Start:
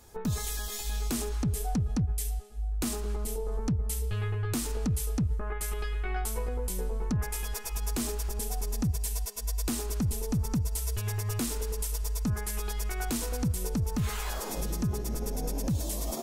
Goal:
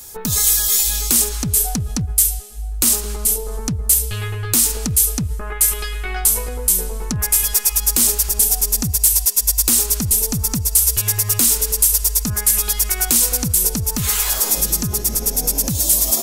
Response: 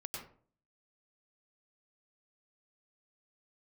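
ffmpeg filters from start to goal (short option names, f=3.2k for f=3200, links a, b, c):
-af "crystalizer=i=6:c=0,acontrast=71,volume=-1dB"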